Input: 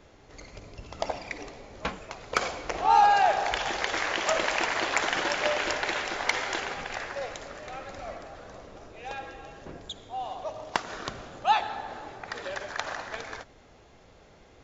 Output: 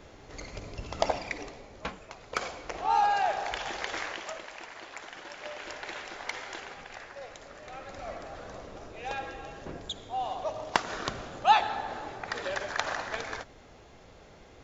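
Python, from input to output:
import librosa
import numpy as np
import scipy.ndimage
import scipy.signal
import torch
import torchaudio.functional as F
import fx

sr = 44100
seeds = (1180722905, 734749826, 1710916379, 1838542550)

y = fx.gain(x, sr, db=fx.line((1.03, 4.0), (1.95, -5.5), (4.01, -5.5), (4.45, -17.0), (5.21, -17.0), (5.93, -9.5), (7.16, -9.5), (8.37, 2.0)))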